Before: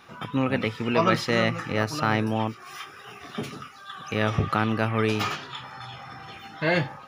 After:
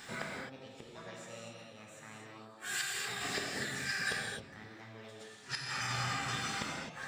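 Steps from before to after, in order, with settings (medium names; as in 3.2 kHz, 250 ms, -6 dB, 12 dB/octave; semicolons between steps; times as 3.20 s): peaking EQ 5.7 kHz +9.5 dB 0.62 oct; formant shift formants +6 st; inverted gate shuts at -24 dBFS, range -30 dB; gated-style reverb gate 290 ms flat, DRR -2 dB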